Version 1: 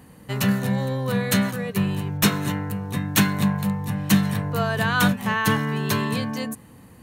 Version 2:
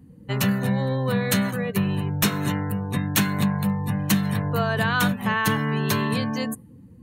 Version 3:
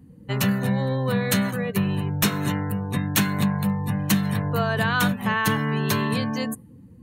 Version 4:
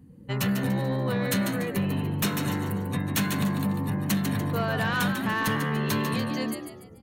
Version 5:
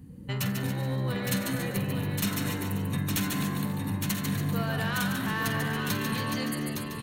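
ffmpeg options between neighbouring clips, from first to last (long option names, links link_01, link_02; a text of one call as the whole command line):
ffmpeg -i in.wav -af "afftdn=noise_reduction=20:noise_floor=-43,acompressor=threshold=-21dB:ratio=2.5,volume=2dB" out.wav
ffmpeg -i in.wav -af anull out.wav
ffmpeg -i in.wav -filter_complex "[0:a]asplit=2[link_01][link_02];[link_02]asplit=4[link_03][link_04][link_05][link_06];[link_03]adelay=145,afreqshift=72,volume=-8.5dB[link_07];[link_04]adelay=290,afreqshift=144,volume=-16.9dB[link_08];[link_05]adelay=435,afreqshift=216,volume=-25.3dB[link_09];[link_06]adelay=580,afreqshift=288,volume=-33.7dB[link_10];[link_07][link_08][link_09][link_10]amix=inputs=4:normalize=0[link_11];[link_01][link_11]amix=inputs=2:normalize=0,asoftclip=type=tanh:threshold=-16dB,volume=-2.5dB" out.wav
ffmpeg -i in.wav -filter_complex "[0:a]equalizer=frequency=530:width=0.33:gain=-6,acompressor=threshold=-42dB:ratio=2,asplit=2[link_01][link_02];[link_02]aecho=0:1:48|86|140|245|276|862:0.251|0.1|0.266|0.15|0.224|0.531[link_03];[link_01][link_03]amix=inputs=2:normalize=0,volume=7dB" out.wav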